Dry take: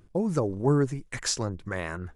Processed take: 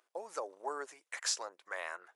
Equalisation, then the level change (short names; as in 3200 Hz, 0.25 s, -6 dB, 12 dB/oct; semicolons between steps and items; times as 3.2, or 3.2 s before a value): HPF 600 Hz 24 dB/oct; -5.0 dB